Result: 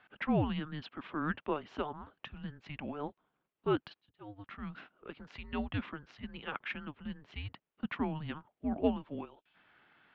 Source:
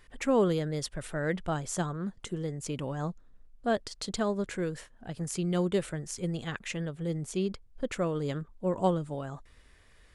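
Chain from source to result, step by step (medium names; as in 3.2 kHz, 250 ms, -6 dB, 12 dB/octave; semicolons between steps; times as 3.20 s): 9.25–9.55 s: time-frequency box 300–2600 Hz -11 dB; mistuned SSB -300 Hz 500–3600 Hz; 3.89–4.70 s: slow attack 758 ms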